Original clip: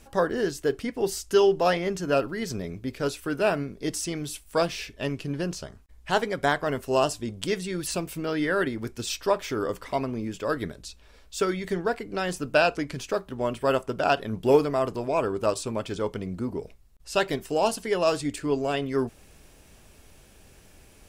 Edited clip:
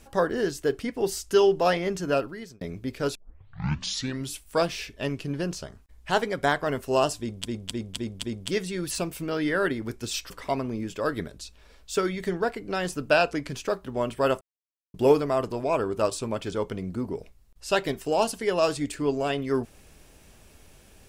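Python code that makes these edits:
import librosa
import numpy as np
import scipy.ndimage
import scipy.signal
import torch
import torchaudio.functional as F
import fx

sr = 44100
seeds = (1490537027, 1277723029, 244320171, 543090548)

y = fx.edit(x, sr, fx.fade_out_span(start_s=2.08, length_s=0.53),
    fx.tape_start(start_s=3.15, length_s=1.19),
    fx.repeat(start_s=7.19, length_s=0.26, count=5),
    fx.cut(start_s=9.26, length_s=0.48),
    fx.silence(start_s=13.85, length_s=0.53), tone=tone)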